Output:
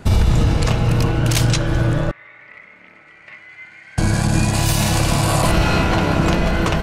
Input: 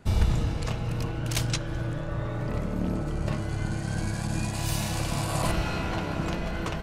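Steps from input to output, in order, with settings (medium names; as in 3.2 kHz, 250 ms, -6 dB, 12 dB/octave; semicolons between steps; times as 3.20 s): 2.11–3.98 s: band-pass filter 2.1 kHz, Q 10; loudness maximiser +19 dB; trim -5.5 dB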